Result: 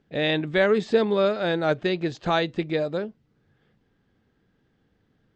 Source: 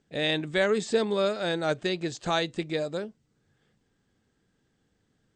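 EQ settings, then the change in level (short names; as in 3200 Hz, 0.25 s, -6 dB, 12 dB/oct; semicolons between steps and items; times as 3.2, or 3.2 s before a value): air absorption 190 m; +5.0 dB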